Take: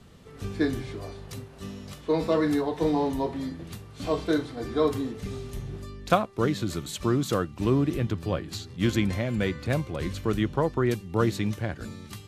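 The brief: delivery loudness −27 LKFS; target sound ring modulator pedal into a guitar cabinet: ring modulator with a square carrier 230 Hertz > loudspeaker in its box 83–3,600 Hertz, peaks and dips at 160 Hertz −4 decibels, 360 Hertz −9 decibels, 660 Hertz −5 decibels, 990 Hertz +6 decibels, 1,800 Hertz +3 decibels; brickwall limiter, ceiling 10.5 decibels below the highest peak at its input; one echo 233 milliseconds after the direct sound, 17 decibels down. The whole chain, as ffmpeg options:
ffmpeg -i in.wav -af "alimiter=limit=-16dB:level=0:latency=1,aecho=1:1:233:0.141,aeval=exprs='val(0)*sgn(sin(2*PI*230*n/s))':channel_layout=same,highpass=83,equalizer=frequency=160:width_type=q:width=4:gain=-4,equalizer=frequency=360:width_type=q:width=4:gain=-9,equalizer=frequency=660:width_type=q:width=4:gain=-5,equalizer=frequency=990:width_type=q:width=4:gain=6,equalizer=frequency=1800:width_type=q:width=4:gain=3,lowpass=frequency=3600:width=0.5412,lowpass=frequency=3600:width=1.3066,volume=3.5dB" out.wav

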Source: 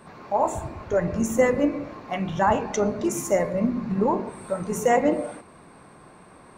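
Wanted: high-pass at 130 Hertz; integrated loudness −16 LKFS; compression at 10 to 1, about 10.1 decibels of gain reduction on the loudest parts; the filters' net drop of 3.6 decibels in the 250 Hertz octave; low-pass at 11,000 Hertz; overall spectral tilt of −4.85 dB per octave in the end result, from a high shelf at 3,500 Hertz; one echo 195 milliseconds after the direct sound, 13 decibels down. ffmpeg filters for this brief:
ffmpeg -i in.wav -af "highpass=130,lowpass=11000,equalizer=frequency=250:width_type=o:gain=-4,highshelf=frequency=3500:gain=-6,acompressor=threshold=-26dB:ratio=10,aecho=1:1:195:0.224,volume=16dB" out.wav

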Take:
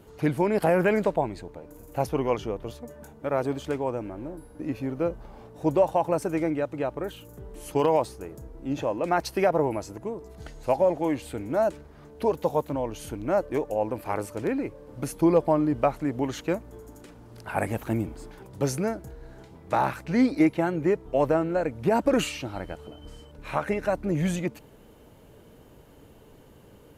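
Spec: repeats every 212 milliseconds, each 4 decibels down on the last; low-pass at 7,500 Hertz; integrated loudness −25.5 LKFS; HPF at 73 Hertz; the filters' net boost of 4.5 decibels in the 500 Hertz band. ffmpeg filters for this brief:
ffmpeg -i in.wav -af "highpass=73,lowpass=7500,equalizer=frequency=500:width_type=o:gain=5.5,aecho=1:1:212|424|636|848|1060|1272|1484|1696|1908:0.631|0.398|0.25|0.158|0.0994|0.0626|0.0394|0.0249|0.0157,volume=-3.5dB" out.wav

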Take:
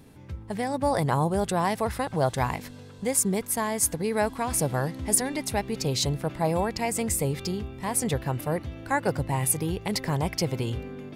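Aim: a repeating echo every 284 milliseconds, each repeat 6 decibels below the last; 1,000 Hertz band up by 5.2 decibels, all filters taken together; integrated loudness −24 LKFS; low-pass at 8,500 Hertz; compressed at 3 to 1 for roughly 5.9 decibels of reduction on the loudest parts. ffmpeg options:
ffmpeg -i in.wav -af "lowpass=8500,equalizer=frequency=1000:width_type=o:gain=6.5,acompressor=threshold=-24dB:ratio=3,aecho=1:1:284|568|852|1136|1420|1704:0.501|0.251|0.125|0.0626|0.0313|0.0157,volume=4dB" out.wav

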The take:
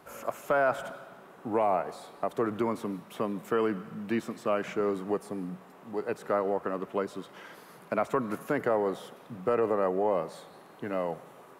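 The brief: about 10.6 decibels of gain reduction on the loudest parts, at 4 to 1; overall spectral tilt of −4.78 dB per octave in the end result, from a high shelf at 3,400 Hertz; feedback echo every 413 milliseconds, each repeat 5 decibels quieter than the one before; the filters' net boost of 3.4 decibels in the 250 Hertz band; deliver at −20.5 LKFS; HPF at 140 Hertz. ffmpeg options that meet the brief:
ffmpeg -i in.wav -af "highpass=140,equalizer=frequency=250:width_type=o:gain=5,highshelf=frequency=3400:gain=6.5,acompressor=threshold=-34dB:ratio=4,aecho=1:1:413|826|1239|1652|2065|2478|2891:0.562|0.315|0.176|0.0988|0.0553|0.031|0.0173,volume=16.5dB" out.wav

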